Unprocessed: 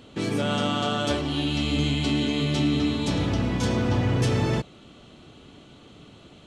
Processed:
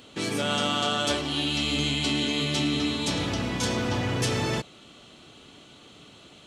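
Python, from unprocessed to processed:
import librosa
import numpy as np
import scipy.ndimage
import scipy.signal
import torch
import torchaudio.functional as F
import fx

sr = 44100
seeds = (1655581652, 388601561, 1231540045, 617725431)

y = fx.tilt_eq(x, sr, slope=2.0)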